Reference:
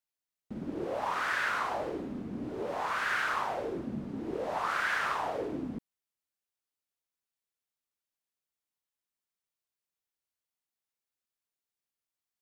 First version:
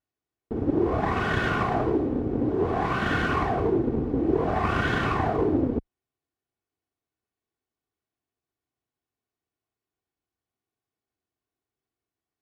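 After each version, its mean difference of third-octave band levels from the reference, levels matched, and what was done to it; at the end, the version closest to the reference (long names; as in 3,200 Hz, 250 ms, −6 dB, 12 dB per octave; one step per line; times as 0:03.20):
7.5 dB: lower of the sound and its delayed copy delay 2.7 ms
high-pass filter 120 Hz 12 dB per octave
spectral tilt −4.5 dB per octave
level +7.5 dB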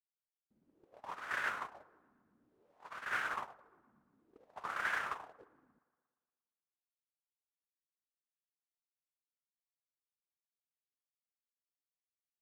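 12.0 dB: noise gate −29 dBFS, range −37 dB
dynamic equaliser 4,400 Hz, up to −5 dB, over −58 dBFS, Q 1.7
delay with a low-pass on its return 117 ms, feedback 61%, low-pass 1,100 Hz, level −20 dB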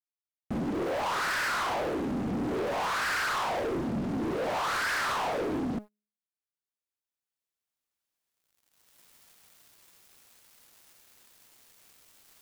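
4.5 dB: camcorder AGC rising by 8.7 dB per second
hum removal 209.4 Hz, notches 3
leveller curve on the samples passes 5
level −7.5 dB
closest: third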